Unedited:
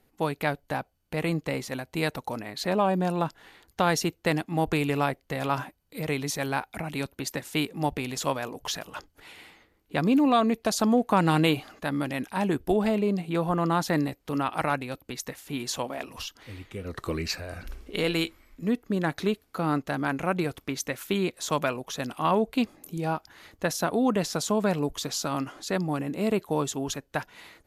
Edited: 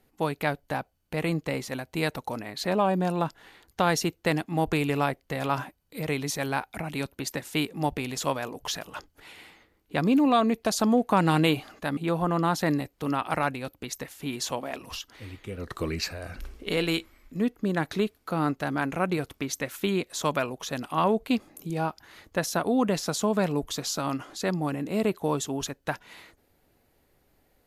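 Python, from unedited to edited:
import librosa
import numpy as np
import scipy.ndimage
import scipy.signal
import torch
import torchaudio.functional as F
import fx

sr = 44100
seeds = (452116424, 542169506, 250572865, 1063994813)

y = fx.edit(x, sr, fx.cut(start_s=11.97, length_s=1.27), tone=tone)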